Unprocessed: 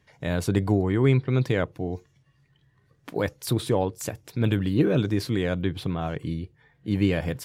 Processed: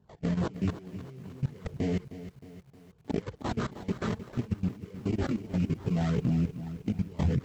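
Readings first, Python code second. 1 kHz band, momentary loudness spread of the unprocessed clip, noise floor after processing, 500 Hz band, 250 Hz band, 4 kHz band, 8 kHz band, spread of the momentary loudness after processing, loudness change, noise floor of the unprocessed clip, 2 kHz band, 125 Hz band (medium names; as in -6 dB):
-6.5 dB, 12 LU, -61 dBFS, -10.5 dB, -5.0 dB, -11.0 dB, -13.0 dB, 16 LU, -6.5 dB, -65 dBFS, -10.5 dB, -5.5 dB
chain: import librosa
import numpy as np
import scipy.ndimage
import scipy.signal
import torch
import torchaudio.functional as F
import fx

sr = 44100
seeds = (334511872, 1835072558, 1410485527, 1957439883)

y = x + 0.48 * np.pad(x, (int(4.6 * sr / 1000.0), 0))[:len(x)]
y = fx.sample_hold(y, sr, seeds[0], rate_hz=2600.0, jitter_pct=20)
y = fx.high_shelf(y, sr, hz=2700.0, db=-8.0)
y = fx.over_compress(y, sr, threshold_db=-29.0, ratio=-0.5)
y = fx.chorus_voices(y, sr, voices=2, hz=0.32, base_ms=20, depth_ms=3.9, mix_pct=60)
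y = fx.tube_stage(y, sr, drive_db=22.0, bias=0.55)
y = scipy.signal.sosfilt(scipy.signal.butter(2, 72.0, 'highpass', fs=sr, output='sos'), y)
y = fx.level_steps(y, sr, step_db=19)
y = fx.filter_lfo_notch(y, sr, shape='saw_down', hz=2.4, low_hz=530.0, high_hz=2300.0, q=2.7)
y = fx.brickwall_lowpass(y, sr, high_hz=8000.0)
y = fx.low_shelf(y, sr, hz=200.0, db=11.5)
y = fx.echo_crushed(y, sr, ms=311, feedback_pct=55, bits=10, wet_db=-13)
y = y * librosa.db_to_amplitude(5.5)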